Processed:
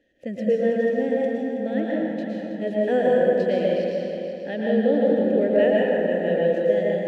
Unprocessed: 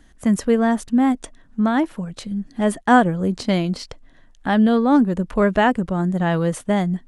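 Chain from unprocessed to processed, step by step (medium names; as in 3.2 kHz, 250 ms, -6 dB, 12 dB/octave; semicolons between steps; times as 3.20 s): median filter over 5 samples; vowel filter e; peaking EQ 1.3 kHz -13.5 dB 1.7 oct; multi-head delay 162 ms, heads all three, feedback 45%, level -12.5 dB; plate-style reverb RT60 2.1 s, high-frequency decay 0.5×, pre-delay 100 ms, DRR -4 dB; trim +8.5 dB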